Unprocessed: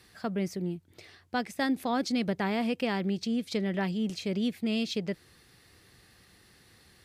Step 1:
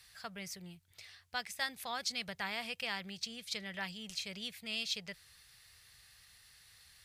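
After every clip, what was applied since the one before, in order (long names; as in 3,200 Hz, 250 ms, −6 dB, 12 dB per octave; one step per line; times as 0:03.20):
guitar amp tone stack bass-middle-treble 10-0-10
level +2 dB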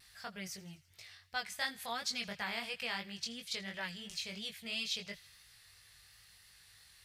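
delay with a high-pass on its return 82 ms, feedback 66%, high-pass 1,500 Hz, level −20 dB
pitch vibrato 1 Hz 24 cents
chorus effect 2.9 Hz, delay 18.5 ms, depth 3.4 ms
level +3 dB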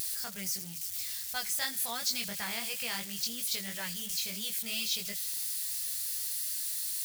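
spike at every zero crossing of −36 dBFS
bass and treble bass +4 dB, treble +7 dB
upward compression, threshold −39 dBFS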